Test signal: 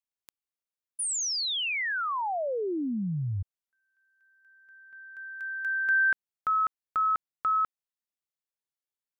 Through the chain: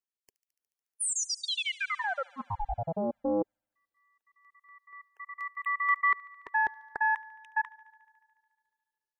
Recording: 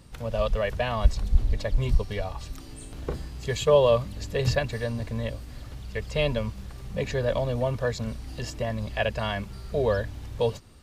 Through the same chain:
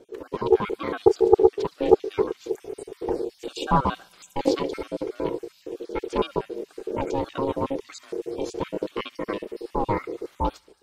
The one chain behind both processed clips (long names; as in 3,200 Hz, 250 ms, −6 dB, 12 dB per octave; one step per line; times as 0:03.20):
time-frequency cells dropped at random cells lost 48%
on a send: delay with a high-pass on its return 72 ms, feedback 77%, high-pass 1,600 Hz, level −20.5 dB
on the sum: automatic gain control gain up to 4 dB
low-shelf EQ 79 Hz +11.5 dB
ring modulation 410 Hz
parametric band 130 Hz −3.5 dB 1.8 octaves
highs frequency-modulated by the lows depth 0.25 ms
level −1 dB